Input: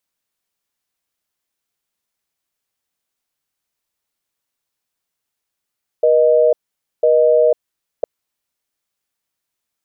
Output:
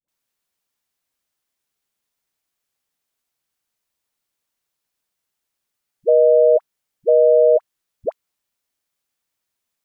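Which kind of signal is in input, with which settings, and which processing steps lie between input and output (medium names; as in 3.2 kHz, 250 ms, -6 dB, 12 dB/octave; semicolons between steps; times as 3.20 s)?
call progress tone busy tone, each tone -12 dBFS 2.01 s
phase dispersion highs, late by 84 ms, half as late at 490 Hz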